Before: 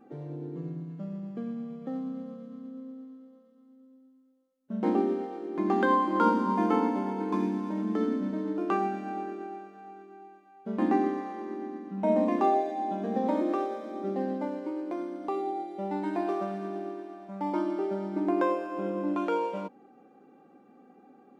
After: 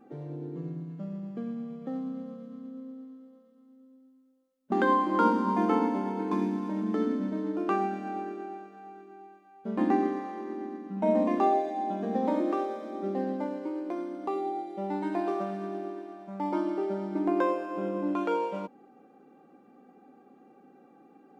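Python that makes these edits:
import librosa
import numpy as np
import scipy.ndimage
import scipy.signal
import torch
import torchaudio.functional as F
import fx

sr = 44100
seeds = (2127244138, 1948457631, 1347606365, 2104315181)

y = fx.edit(x, sr, fx.cut(start_s=4.72, length_s=1.01), tone=tone)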